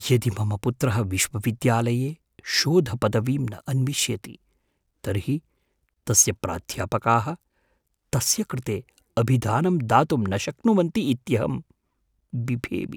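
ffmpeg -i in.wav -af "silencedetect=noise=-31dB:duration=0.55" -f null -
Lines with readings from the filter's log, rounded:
silence_start: 4.30
silence_end: 5.04 | silence_duration: 0.74
silence_start: 5.38
silence_end: 6.07 | silence_duration: 0.69
silence_start: 7.34
silence_end: 8.13 | silence_duration: 0.79
silence_start: 11.59
silence_end: 12.34 | silence_duration: 0.74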